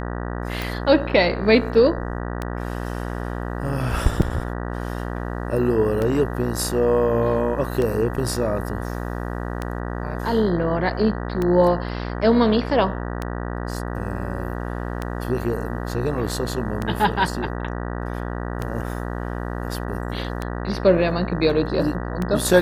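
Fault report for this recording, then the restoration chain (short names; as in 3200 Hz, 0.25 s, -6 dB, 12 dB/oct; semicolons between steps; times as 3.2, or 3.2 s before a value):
buzz 60 Hz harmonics 32 -28 dBFS
tick 33 1/3 rpm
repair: de-click; de-hum 60 Hz, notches 32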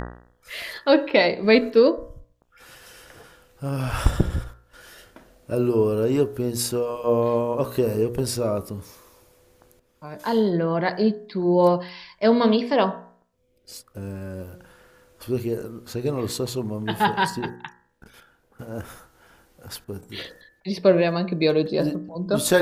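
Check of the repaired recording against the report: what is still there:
none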